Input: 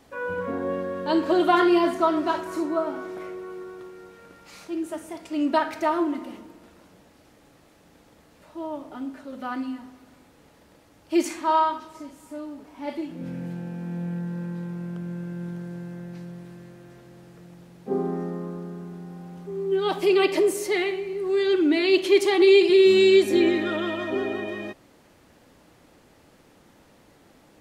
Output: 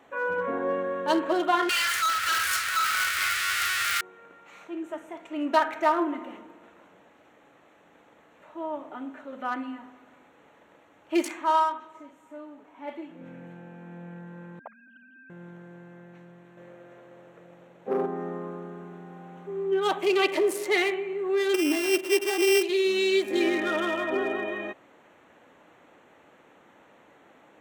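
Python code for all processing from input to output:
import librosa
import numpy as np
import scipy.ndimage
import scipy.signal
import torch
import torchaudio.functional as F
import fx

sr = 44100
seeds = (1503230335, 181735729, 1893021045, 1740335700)

y = fx.chain(x, sr, fx.zero_step(step_db=-29.5),
    fx.cheby1_bandstop(low_hz=110.0, high_hz=1300.0, order=5),
    fx.leveller(passes=5), at=(1.69, 4.01))
y = fx.chain(y, sr, fx.sine_speech(),
    fx.highpass(hz=200.0, slope=12),
    fx.low_shelf_res(hz=450.0, db=-11.5, q=3.0), at=(14.59, 15.3))
y = fx.chain(y, sr, fx.peak_eq(hz=540.0, db=8.5, octaves=0.49),
    fx.leveller(passes=1), at=(16.57, 18.06))
y = fx.chain(y, sr, fx.sample_sort(block=16),
    fx.tilt_shelf(db=3.5, hz=910.0), at=(21.54, 22.63))
y = fx.wiener(y, sr, points=9)
y = fx.highpass(y, sr, hz=720.0, slope=6)
y = fx.rider(y, sr, range_db=4, speed_s=0.5)
y = y * 10.0 ** (1.5 / 20.0)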